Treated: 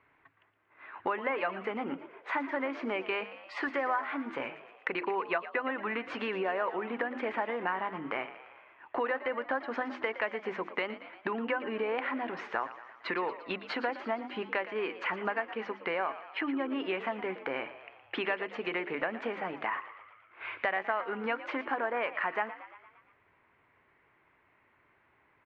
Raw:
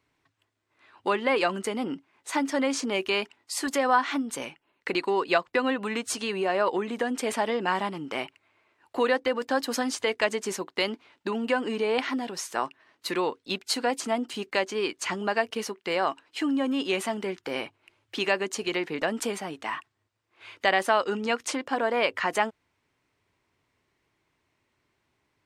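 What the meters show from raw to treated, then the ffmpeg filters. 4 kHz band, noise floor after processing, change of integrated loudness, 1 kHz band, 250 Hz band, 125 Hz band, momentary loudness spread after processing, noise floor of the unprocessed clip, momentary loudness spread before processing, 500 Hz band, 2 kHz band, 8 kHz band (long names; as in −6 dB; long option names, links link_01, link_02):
−12.5 dB, −68 dBFS, −6.0 dB, −5.0 dB, −8.0 dB, −8.5 dB, 7 LU, −76 dBFS, 9 LU, −6.5 dB, −3.5 dB, below −35 dB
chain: -filter_complex "[0:a]lowpass=frequency=2100:width=0.5412,lowpass=frequency=2100:width=1.3066,tiltshelf=frequency=630:gain=-5.5,bandreject=frequency=50:width_type=h:width=6,bandreject=frequency=100:width_type=h:width=6,bandreject=frequency=150:width_type=h:width=6,bandreject=frequency=200:width_type=h:width=6,bandreject=frequency=250:width_type=h:width=6,bandreject=frequency=300:width_type=h:width=6,bandreject=frequency=350:width_type=h:width=6,acompressor=threshold=-41dB:ratio=3,asplit=2[link_01][link_02];[link_02]asplit=6[link_03][link_04][link_05][link_06][link_07][link_08];[link_03]adelay=116,afreqshift=61,volume=-14dB[link_09];[link_04]adelay=232,afreqshift=122,volume=-18.6dB[link_10];[link_05]adelay=348,afreqshift=183,volume=-23.2dB[link_11];[link_06]adelay=464,afreqshift=244,volume=-27.7dB[link_12];[link_07]adelay=580,afreqshift=305,volume=-32.3dB[link_13];[link_08]adelay=696,afreqshift=366,volume=-36.9dB[link_14];[link_09][link_10][link_11][link_12][link_13][link_14]amix=inputs=6:normalize=0[link_15];[link_01][link_15]amix=inputs=2:normalize=0,volume=7dB"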